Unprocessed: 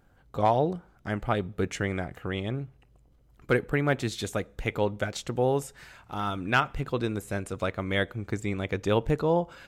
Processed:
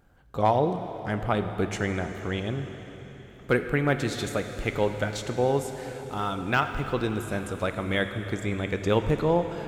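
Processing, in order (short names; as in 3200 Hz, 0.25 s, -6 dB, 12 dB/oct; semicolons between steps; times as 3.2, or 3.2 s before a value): de-esser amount 70%; plate-style reverb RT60 4.4 s, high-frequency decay 1×, DRR 7 dB; gain +1 dB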